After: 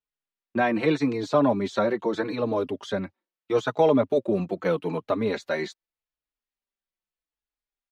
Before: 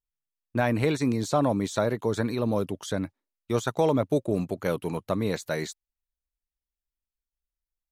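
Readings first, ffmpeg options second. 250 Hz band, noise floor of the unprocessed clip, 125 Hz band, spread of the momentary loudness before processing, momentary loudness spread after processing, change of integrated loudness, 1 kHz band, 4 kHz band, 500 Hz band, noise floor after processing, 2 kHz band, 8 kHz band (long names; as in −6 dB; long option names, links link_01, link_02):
+1.5 dB, below −85 dBFS, −4.5 dB, 8 LU, 9 LU, +2.0 dB, +3.0 dB, +0.5 dB, +3.0 dB, below −85 dBFS, +3.0 dB, can't be measured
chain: -filter_complex "[0:a]acrossover=split=170 4700:gain=0.178 1 0.0891[link_01][link_02][link_03];[link_01][link_02][link_03]amix=inputs=3:normalize=0,asplit=2[link_04][link_05];[link_05]adelay=4.3,afreqshift=-0.8[link_06];[link_04][link_06]amix=inputs=2:normalize=1,volume=6dB"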